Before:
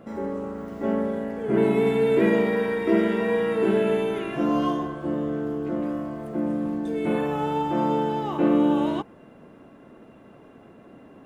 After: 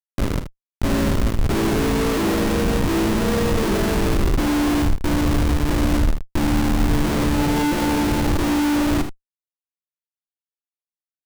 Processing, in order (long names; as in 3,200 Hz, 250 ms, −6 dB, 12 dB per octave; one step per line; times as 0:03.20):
comb filter 3.3 ms, depth 32%
comparator with hysteresis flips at −24.5 dBFS
low-shelf EQ 76 Hz +8.5 dB
ambience of single reflections 51 ms −11 dB, 79 ms −10.5 dB
level +3 dB